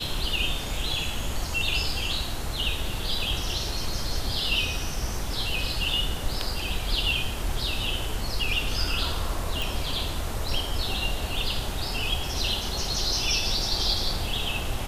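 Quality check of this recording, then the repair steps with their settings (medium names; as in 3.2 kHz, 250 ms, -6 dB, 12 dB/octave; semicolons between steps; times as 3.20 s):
9.62 s: pop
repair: de-click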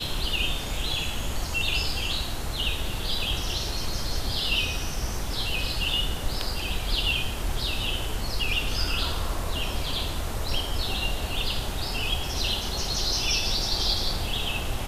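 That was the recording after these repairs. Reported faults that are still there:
nothing left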